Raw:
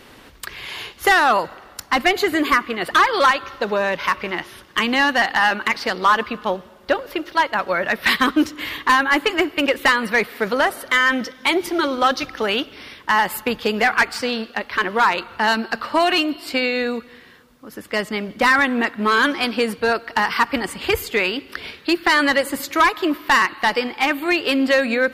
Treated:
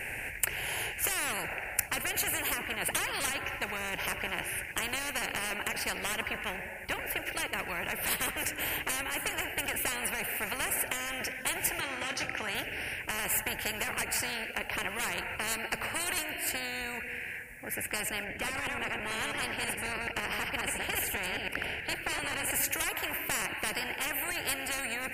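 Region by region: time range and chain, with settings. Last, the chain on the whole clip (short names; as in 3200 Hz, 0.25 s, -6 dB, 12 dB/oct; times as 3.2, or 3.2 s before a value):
11.8–12.55 doubler 23 ms -11 dB + compressor 2:1, threshold -19 dBFS + BPF 110–7600 Hz
18.24–22.51 reverse delay 0.108 s, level -4.5 dB + LPF 3200 Hz 6 dB/oct
whole clip: EQ curve 120 Hz 0 dB, 250 Hz -12 dB, 820 Hz 0 dB, 1200 Hz -22 dB, 1700 Hz +14 dB, 2500 Hz +14 dB, 3500 Hz -24 dB, 6000 Hz -9 dB, 9100 Hz +6 dB, 14000 Hz +2 dB; limiter -2.5 dBFS; spectral compressor 10:1; gain -8 dB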